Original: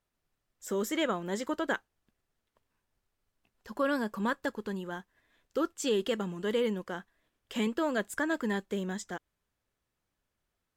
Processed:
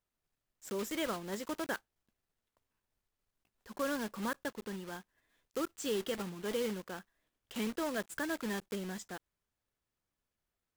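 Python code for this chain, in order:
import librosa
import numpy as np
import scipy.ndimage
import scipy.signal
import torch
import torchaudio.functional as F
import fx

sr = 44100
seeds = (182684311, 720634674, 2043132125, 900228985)

y = fx.block_float(x, sr, bits=3)
y = y * librosa.db_to_amplitude(-6.0)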